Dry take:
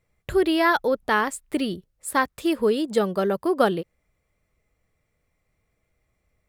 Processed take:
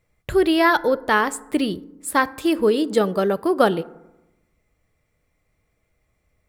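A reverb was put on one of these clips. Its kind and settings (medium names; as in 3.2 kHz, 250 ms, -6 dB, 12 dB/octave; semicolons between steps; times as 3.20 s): FDN reverb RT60 0.96 s, low-frequency decay 1.25×, high-frequency decay 0.4×, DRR 16.5 dB; trim +3 dB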